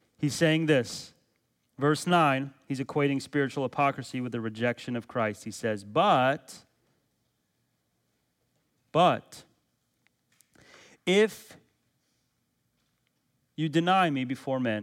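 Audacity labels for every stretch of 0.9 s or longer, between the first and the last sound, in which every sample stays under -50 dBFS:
6.620000	8.940000	silence
11.580000	13.580000	silence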